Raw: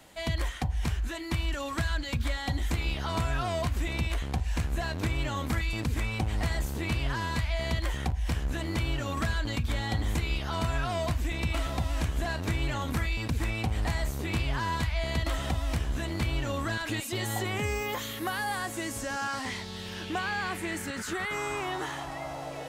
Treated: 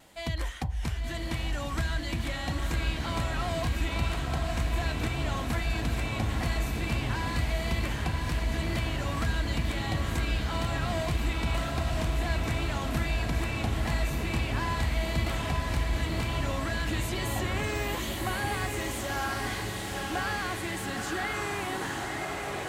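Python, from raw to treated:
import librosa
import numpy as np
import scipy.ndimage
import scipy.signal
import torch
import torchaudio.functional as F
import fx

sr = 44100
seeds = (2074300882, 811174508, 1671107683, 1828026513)

y = fx.wow_flutter(x, sr, seeds[0], rate_hz=2.1, depth_cents=35.0)
y = fx.echo_diffused(y, sr, ms=955, feedback_pct=66, wet_db=-3)
y = F.gain(torch.from_numpy(y), -2.0).numpy()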